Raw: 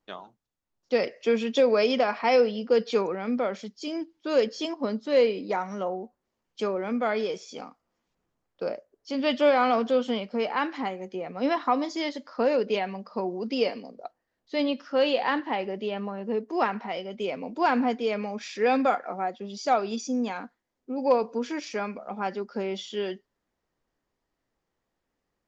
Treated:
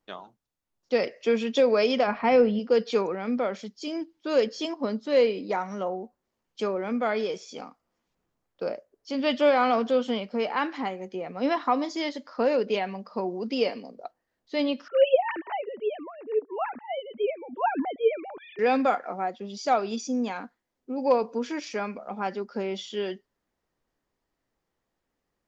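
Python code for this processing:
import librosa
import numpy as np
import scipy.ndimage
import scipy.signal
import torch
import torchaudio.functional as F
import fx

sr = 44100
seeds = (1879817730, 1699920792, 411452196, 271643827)

y = fx.bass_treble(x, sr, bass_db=12, treble_db=-14, at=(2.06, 2.58), fade=0.02)
y = fx.sine_speech(y, sr, at=(14.88, 18.59))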